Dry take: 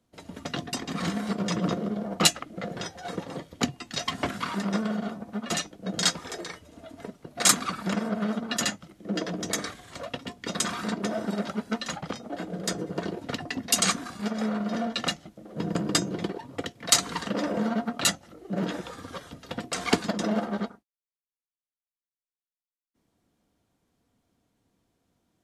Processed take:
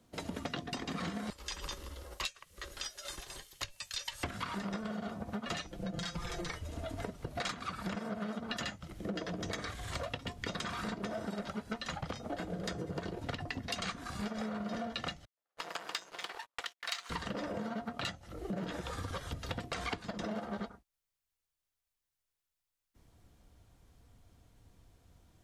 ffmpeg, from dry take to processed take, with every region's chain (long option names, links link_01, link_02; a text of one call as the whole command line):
ffmpeg -i in.wav -filter_complex "[0:a]asettb=1/sr,asplit=3[link_01][link_02][link_03];[link_01]atrim=end=1.304[link_04];[link_02]atrim=start=1.3:end=4.24,asetpts=PTS-STARTPTS,afade=type=in:duration=0.004:curve=qsin,afade=type=out:start_time=2.936:duration=0.004:curve=qsin,aderivative,afreqshift=-140[link_05];[link_03]atrim=start=4.236[link_06];[link_04][link_05]acrossfade=duration=0.004:curve1=hsin:curve2=qsin[link_07];[link_07][link_06]acrossfade=duration=0.004:curve1=qsin:curve2=hsin,asettb=1/sr,asplit=3[link_08][link_09][link_10];[link_08]atrim=end=5.684[link_11];[link_09]atrim=start=5.68:end=6.5,asetpts=PTS-STARTPTS,afade=type=in:duration=0.004:curve=qsin,afade=type=out:start_time=0.816:duration=0.004:curve=qsin,acompressor=threshold=-38dB:ratio=3:attack=3.2:release=140:knee=1:detection=peak,asubboost=boost=9.5:cutoff=220,aecho=1:1:5.8:0.83,atrim=end_sample=36162[link_12];[link_10]atrim=start=6.496[link_13];[link_11][link_12]acrossfade=duration=0.004:curve1=hsin:curve2=qsin[link_14];[link_14][link_13]acrossfade=duration=0.004:curve1=qsin:curve2=hsin,asettb=1/sr,asplit=3[link_15][link_16][link_17];[link_15]atrim=end=15.254[link_18];[link_16]atrim=start=15.25:end=17.1,asetpts=PTS-STARTPTS,afade=type=in:duration=0.004:curve=qsin,afade=type=out:start_time=1.846:duration=0.004:curve=qsin,aeval=exprs='if(lt(val(0),0),0.251*val(0),val(0))':channel_layout=same,highpass=1200,agate=range=-37dB:threshold=-55dB:ratio=16:release=100:detection=peak[link_19];[link_17]atrim=start=17.096[link_20];[link_18][link_19]acrossfade=duration=0.004:curve1=hsin:curve2=qsin[link_21];[link_21][link_20]acrossfade=duration=0.004:curve1=qsin:curve2=hsin,acrossover=split=4500[link_22][link_23];[link_23]acompressor=threshold=-46dB:ratio=4:attack=1:release=60[link_24];[link_22][link_24]amix=inputs=2:normalize=0,asubboost=boost=7:cutoff=82,acompressor=threshold=-42dB:ratio=10,volume=6.5dB" out.wav